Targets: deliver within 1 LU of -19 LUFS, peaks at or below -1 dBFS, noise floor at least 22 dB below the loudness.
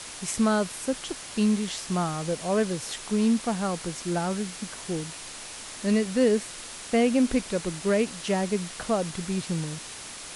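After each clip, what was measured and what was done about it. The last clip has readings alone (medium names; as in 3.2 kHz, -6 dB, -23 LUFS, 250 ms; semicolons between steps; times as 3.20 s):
noise floor -41 dBFS; noise floor target -50 dBFS; loudness -27.5 LUFS; peak level -11.5 dBFS; loudness target -19.0 LUFS
-> noise reduction 9 dB, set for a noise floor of -41 dBFS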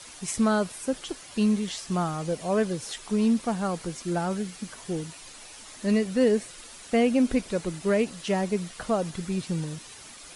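noise floor -46 dBFS; noise floor target -50 dBFS
-> noise reduction 6 dB, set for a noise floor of -46 dBFS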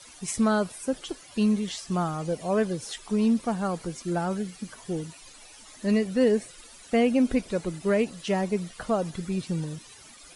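noise floor -49 dBFS; noise floor target -50 dBFS
-> noise reduction 6 dB, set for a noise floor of -49 dBFS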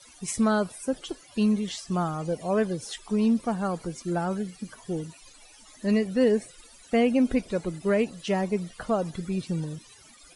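noise floor -53 dBFS; loudness -27.5 LUFS; peak level -11.5 dBFS; loudness target -19.0 LUFS
-> trim +8.5 dB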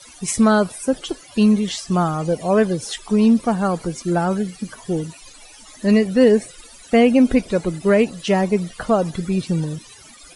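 loudness -19.0 LUFS; peak level -3.0 dBFS; noise floor -44 dBFS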